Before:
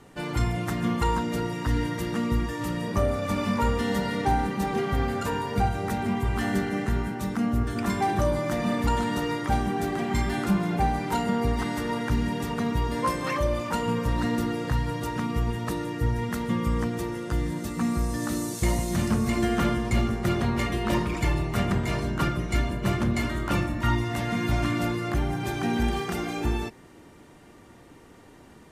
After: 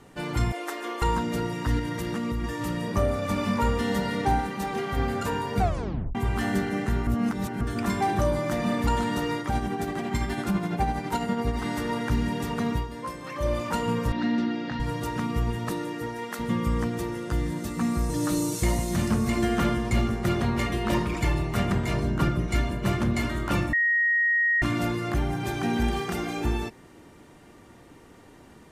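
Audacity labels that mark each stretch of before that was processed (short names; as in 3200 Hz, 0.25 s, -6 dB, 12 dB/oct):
0.520000	1.020000	steep high-pass 320 Hz 48 dB/oct
1.790000	2.440000	compressor, threshold -25 dBFS
4.400000	4.970000	low shelf 420 Hz -6 dB
5.600000	5.600000	tape stop 0.55 s
7.070000	7.610000	reverse
9.400000	11.650000	tremolo 12 Hz, depth 46%
12.740000	13.480000	dip -9 dB, fades 0.13 s
14.120000	14.800000	speaker cabinet 220–4900 Hz, peaks and dips at 250 Hz +8 dB, 450 Hz -9 dB, 1100 Hz -8 dB
15.690000	16.380000	HPF 120 Hz -> 470 Hz
18.090000	18.630000	comb 6.5 ms, depth 91%
21.930000	22.480000	tilt shelf lows +3 dB, about 640 Hz
23.730000	24.620000	bleep 1880 Hz -19.5 dBFS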